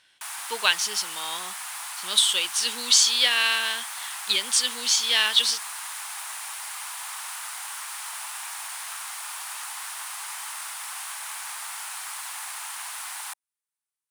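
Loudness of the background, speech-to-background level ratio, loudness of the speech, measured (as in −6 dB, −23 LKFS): −33.0 LKFS, 12.0 dB, −21.0 LKFS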